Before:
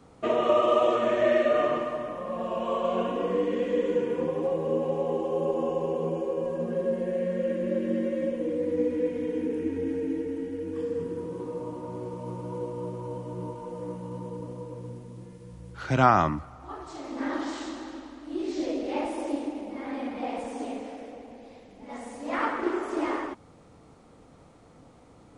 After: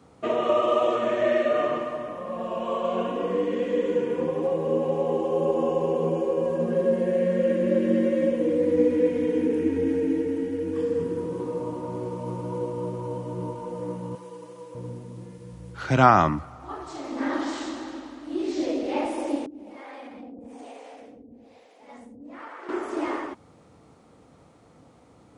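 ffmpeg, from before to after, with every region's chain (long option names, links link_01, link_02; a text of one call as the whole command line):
ffmpeg -i in.wav -filter_complex "[0:a]asettb=1/sr,asplit=3[link_01][link_02][link_03];[link_01]atrim=end=14.154[link_04];[link_02]atrim=start=14.15:end=14.75,asetpts=PTS-STARTPTS,afade=type=in:duration=0.004:curve=qsin,afade=type=out:start_time=0.596:duration=0.004:curve=qsin,highpass=frequency=1300:poles=1,aecho=1:1:6:0.65,atrim=end_sample=26460[link_05];[link_03]atrim=start=14.746[link_06];[link_04][link_05]acrossfade=duration=0.004:curve1=hsin:curve2=qsin[link_07];[link_07][link_06]acrossfade=duration=0.004:curve1=qsin:curve2=hsin,asettb=1/sr,asplit=3[link_08][link_09][link_10];[link_08]atrim=end=19.464[link_11];[link_09]atrim=start=19.46:end=22.69,asetpts=PTS-STARTPTS,afade=type=in:duration=0.004:curve=qsin,afade=type=out:start_time=3.226:duration=0.004:curve=qsin,acrossover=split=400[link_12][link_13];[link_12]aeval=exprs='val(0)*(1-1/2+1/2*cos(2*PI*1.1*n/s))':channel_layout=same[link_14];[link_13]aeval=exprs='val(0)*(1-1/2-1/2*cos(2*PI*1.1*n/s))':channel_layout=same[link_15];[link_14][link_15]amix=inputs=2:normalize=0,acompressor=threshold=-42dB:ratio=2.5:attack=3.2:release=140:knee=1:detection=peak[link_16];[link_10]atrim=start=22.686[link_17];[link_11][link_16]acrossfade=duration=0.004:curve1=hsin:curve2=qsin[link_18];[link_18][link_17]acrossfade=duration=0.004:curve1=qsin:curve2=hsin,highpass=63,dynaudnorm=framelen=650:gausssize=17:maxgain=6.5dB" out.wav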